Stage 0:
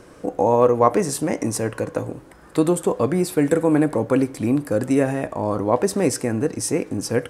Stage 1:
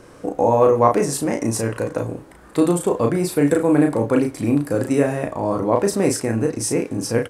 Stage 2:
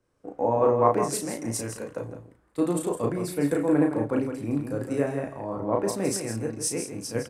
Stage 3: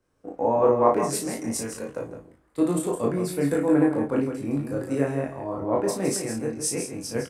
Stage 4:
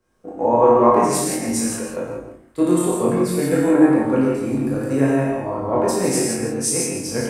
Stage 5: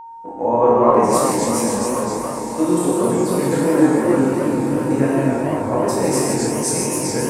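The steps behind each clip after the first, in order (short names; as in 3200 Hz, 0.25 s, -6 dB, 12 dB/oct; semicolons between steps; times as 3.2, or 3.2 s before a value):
doubler 35 ms -4 dB
on a send: echo 0.164 s -6.5 dB; on the sum: three-band expander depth 70%; gain -8.5 dB
doubler 22 ms -4 dB
non-linear reverb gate 0.19 s flat, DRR -2 dB; gain +3 dB
diffused feedback echo 1.056 s, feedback 54%, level -11 dB; whine 920 Hz -33 dBFS; warbling echo 0.265 s, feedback 47%, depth 217 cents, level -4 dB; gain -1 dB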